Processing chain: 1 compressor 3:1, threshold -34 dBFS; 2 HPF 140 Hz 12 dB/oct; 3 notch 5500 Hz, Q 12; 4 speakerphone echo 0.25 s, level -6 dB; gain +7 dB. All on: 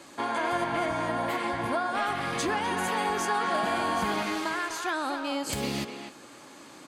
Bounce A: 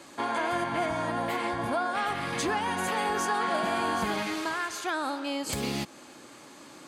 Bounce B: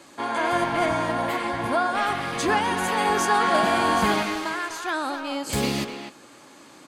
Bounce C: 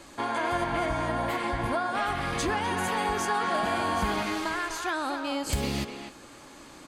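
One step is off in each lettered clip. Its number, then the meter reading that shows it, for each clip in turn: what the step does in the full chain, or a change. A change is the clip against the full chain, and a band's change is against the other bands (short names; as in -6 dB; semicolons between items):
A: 4, echo-to-direct -11.0 dB to none; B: 1, loudness change +5.0 LU; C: 2, 125 Hz band +4.5 dB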